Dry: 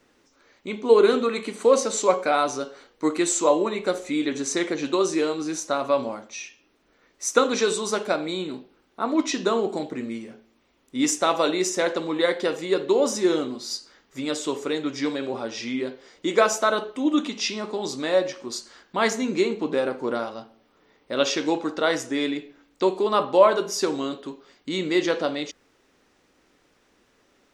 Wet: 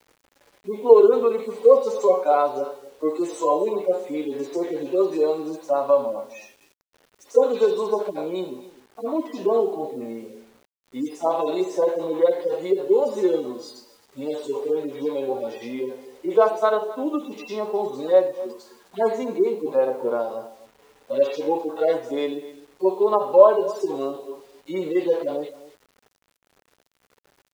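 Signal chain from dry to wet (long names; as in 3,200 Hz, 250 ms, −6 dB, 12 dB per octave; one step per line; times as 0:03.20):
harmonic-percussive split with one part muted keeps harmonic
in parallel at −1.5 dB: downward compressor 12 to 1, threshold −30 dBFS, peak gain reduction 20 dB
on the sum: high-pass filter 110 Hz 24 dB per octave
flat-topped bell 640 Hz +11 dB
hum removal 335.3 Hz, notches 2
on a send: single-tap delay 256 ms −17.5 dB
on the sum: bit reduction 8 bits
level −7.5 dB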